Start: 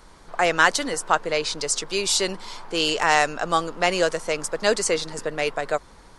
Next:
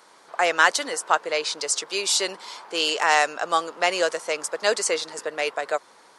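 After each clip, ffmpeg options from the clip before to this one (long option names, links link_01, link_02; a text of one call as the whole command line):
ffmpeg -i in.wav -af "highpass=430" out.wav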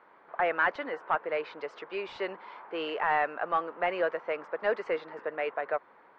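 ffmpeg -i in.wav -af "asoftclip=type=tanh:threshold=-13.5dB,lowpass=frequency=2200:width=0.5412,lowpass=frequency=2200:width=1.3066,volume=-4dB" out.wav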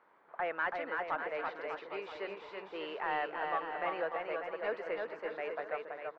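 ffmpeg -i in.wav -af "aecho=1:1:330|594|805.2|974.2|1109:0.631|0.398|0.251|0.158|0.1,volume=-8dB" out.wav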